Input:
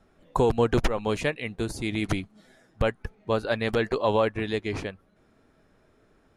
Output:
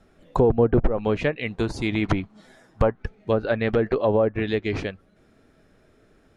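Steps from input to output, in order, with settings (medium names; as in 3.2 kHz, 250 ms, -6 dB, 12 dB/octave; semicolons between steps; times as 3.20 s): low-pass that closes with the level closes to 880 Hz, closed at -19 dBFS; peaking EQ 980 Hz -4.5 dB 0.59 oct, from 1.51 s +5 dB, from 2.95 s -6 dB; trim +4.5 dB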